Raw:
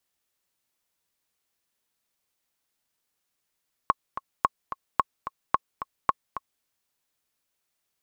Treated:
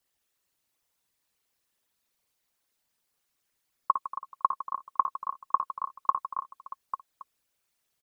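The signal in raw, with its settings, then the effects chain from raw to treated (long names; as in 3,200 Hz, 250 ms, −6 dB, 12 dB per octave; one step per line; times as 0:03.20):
click track 219 BPM, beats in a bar 2, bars 5, 1,090 Hz, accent 12.5 dB −6 dBFS
spectral envelope exaggerated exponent 2
multi-tap delay 56/69/157/234/631/845 ms −8.5/−19/−13.5/−17/−17/−10 dB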